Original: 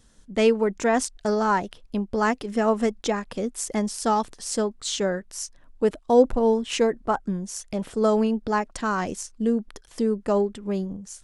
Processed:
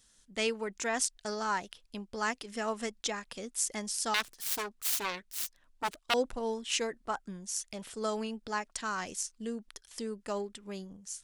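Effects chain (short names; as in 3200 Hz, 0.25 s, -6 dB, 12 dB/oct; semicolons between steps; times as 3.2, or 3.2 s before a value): 4.14–6.14 self-modulated delay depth 0.97 ms; tilt shelf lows -8 dB, about 1300 Hz; gain -8 dB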